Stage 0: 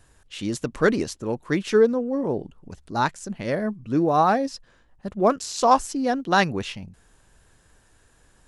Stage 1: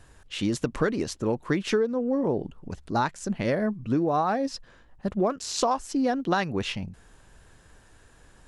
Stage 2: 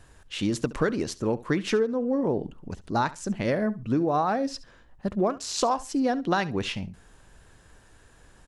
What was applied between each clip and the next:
high shelf 6700 Hz -7 dB; compressor 10:1, threshold -25 dBFS, peak gain reduction 14.5 dB; gain +4 dB
feedback echo 69 ms, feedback 18%, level -18.5 dB

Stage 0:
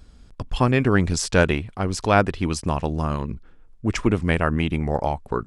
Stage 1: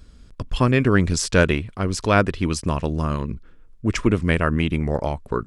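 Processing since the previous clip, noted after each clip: bell 790 Hz -8.5 dB 0.35 oct; gain +1.5 dB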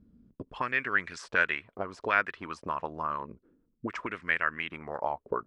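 auto-wah 200–1800 Hz, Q 2.4, up, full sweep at -15.5 dBFS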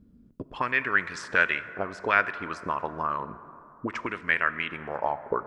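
plate-style reverb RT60 3.1 s, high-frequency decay 0.35×, DRR 13 dB; gain +3.5 dB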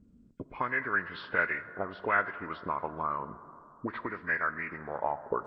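nonlinear frequency compression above 1400 Hz 1.5:1; gain -3.5 dB

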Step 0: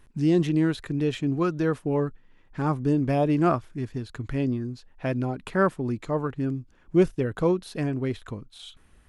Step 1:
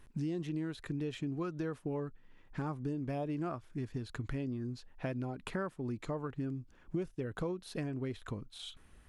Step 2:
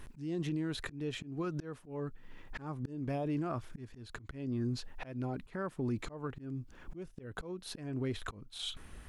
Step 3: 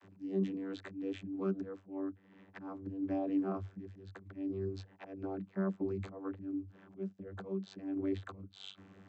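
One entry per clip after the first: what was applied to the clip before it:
compressor 6:1, threshold -32 dBFS, peak gain reduction 17 dB; gain -2.5 dB
auto swell 0.471 s; limiter -37 dBFS, peak gain reduction 10 dB; gain +9.5 dB
vocoder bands 32, saw 96.5 Hz; gain +1 dB

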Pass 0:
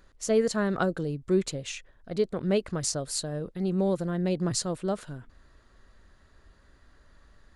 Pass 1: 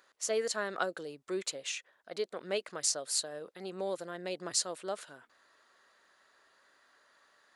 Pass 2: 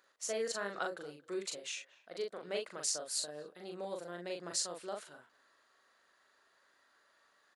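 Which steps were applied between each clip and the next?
HPF 640 Hz 12 dB/oct; dynamic EQ 1000 Hz, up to -4 dB, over -45 dBFS, Q 1
doubler 40 ms -3.5 dB; speakerphone echo 0.23 s, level -21 dB; gain -5.5 dB

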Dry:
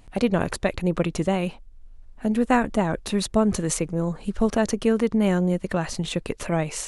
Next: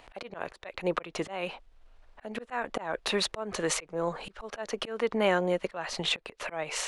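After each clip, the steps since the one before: three-band isolator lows -20 dB, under 450 Hz, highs -14 dB, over 4600 Hz; in parallel at +1.5 dB: compressor, threshold -36 dBFS, peak gain reduction 17.5 dB; on the sum: auto swell 0.271 s; gain +1.5 dB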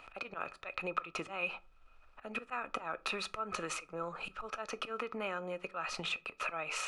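compressor 4:1, threshold -33 dBFS, peak gain reduction 11.5 dB; small resonant body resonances 1300/2500 Hz, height 18 dB, ringing for 30 ms; on a send at -15 dB: reverb RT60 0.30 s, pre-delay 4 ms; on the sum: gain -5.5 dB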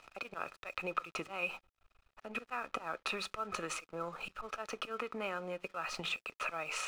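crossover distortion -58.5 dBFS

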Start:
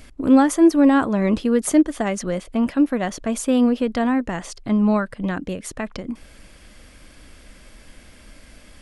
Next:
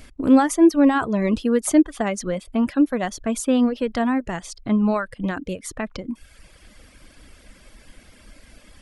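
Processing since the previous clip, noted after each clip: reverb removal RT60 0.82 s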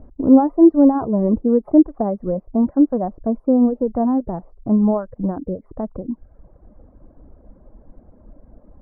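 inverse Chebyshev low-pass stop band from 2900 Hz, stop band 60 dB; gain +3.5 dB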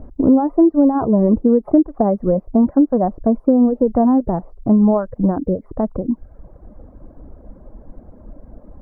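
compressor 6:1, threshold -16 dBFS, peak gain reduction 10.5 dB; gain +6.5 dB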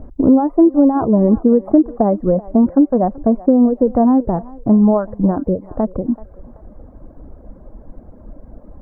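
thinning echo 0.382 s, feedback 43%, high-pass 650 Hz, level -16.5 dB; gain +1.5 dB

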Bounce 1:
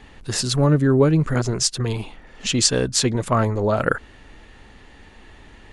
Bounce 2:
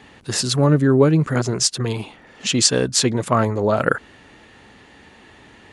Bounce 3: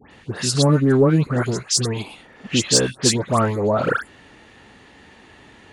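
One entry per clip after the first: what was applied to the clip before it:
HPF 110 Hz 12 dB/oct; gain +2 dB
in parallel at -6 dB: overloaded stage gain 10 dB; on the sum: dispersion highs, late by 0.113 s, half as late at 2000 Hz; gain -4 dB

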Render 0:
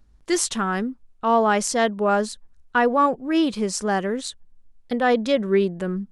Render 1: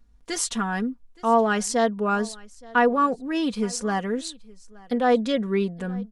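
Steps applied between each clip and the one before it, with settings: comb 4.2 ms, depth 63%; echo 0.871 s -23.5 dB; gain -4 dB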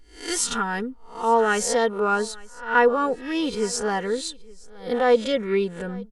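spectral swells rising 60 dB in 0.41 s; comb 2.2 ms, depth 46%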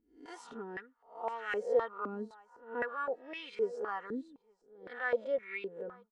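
stepped band-pass 3.9 Hz 260–2200 Hz; gain -3.5 dB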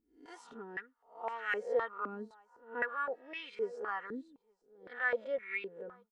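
dynamic EQ 1900 Hz, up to +8 dB, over -51 dBFS, Q 0.86; gain -4 dB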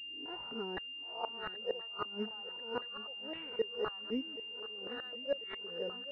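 flipped gate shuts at -29 dBFS, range -24 dB; swung echo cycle 1.04 s, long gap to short 3:1, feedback 45%, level -16 dB; pulse-width modulation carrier 2800 Hz; gain +6.5 dB

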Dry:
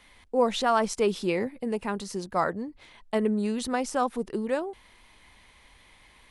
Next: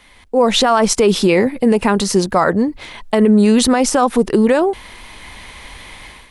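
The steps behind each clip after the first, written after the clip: AGC gain up to 12 dB; limiter -12.5 dBFS, peak gain reduction 9.5 dB; gain +8.5 dB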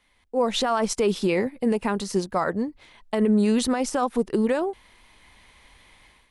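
upward expander 1.5:1, over -28 dBFS; gain -8.5 dB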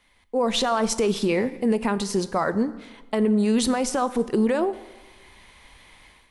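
limiter -17 dBFS, peak gain reduction 4.5 dB; plate-style reverb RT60 1.2 s, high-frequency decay 0.8×, DRR 13.5 dB; gain +3 dB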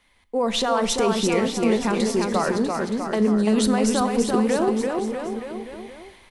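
bouncing-ball echo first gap 0.34 s, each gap 0.9×, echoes 5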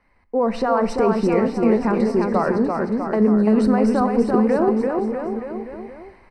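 running mean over 13 samples; gain +3.5 dB

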